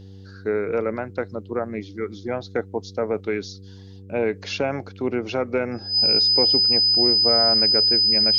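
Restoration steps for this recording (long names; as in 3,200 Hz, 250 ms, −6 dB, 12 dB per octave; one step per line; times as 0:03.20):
hum removal 96.6 Hz, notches 5
notch filter 5,000 Hz, Q 30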